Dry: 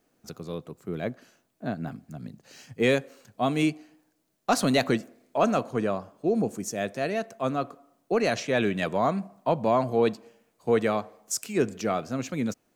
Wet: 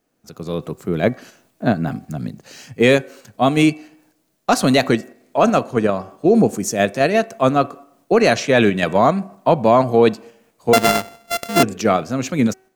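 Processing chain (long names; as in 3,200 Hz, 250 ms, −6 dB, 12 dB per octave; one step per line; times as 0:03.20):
0:10.73–0:11.63: samples sorted by size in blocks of 64 samples
automatic gain control gain up to 16.5 dB
hum removal 379.5 Hz, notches 7
in parallel at −1.5 dB: output level in coarse steps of 15 dB
on the sum: level −4.5 dB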